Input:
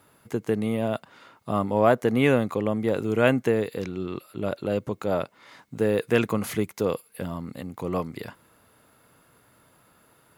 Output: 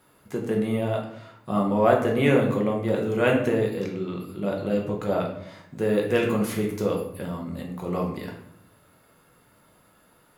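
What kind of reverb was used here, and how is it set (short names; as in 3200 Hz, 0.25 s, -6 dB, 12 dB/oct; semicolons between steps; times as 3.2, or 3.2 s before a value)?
shoebox room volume 140 m³, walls mixed, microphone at 0.99 m; gain -3 dB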